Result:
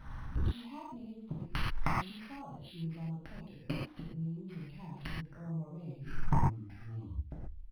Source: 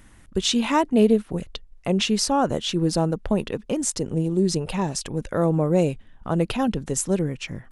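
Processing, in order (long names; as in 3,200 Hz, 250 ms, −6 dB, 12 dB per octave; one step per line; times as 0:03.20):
turntable brake at the end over 1.87 s
surface crackle 170 per second −44 dBFS
phaser swept by the level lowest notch 410 Hz, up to 1,700 Hz, full sweep at −19.5 dBFS
high-frequency loss of the air 99 metres
mains-hum notches 50/100/150/200/250/300/350/400 Hz
brickwall limiter −16 dBFS, peak gain reduction 8.5 dB
gate with flip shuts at −26 dBFS, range −37 dB
octave-band graphic EQ 125/500/1,000/8,000 Hz +6/−10/+4/+6 dB
reverb whose tail is shaped and stops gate 160 ms flat, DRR −6 dB
soft clipping −31 dBFS, distortion −12 dB
automatic gain control gain up to 9.5 dB
linearly interpolated sample-rate reduction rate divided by 6×
level +1.5 dB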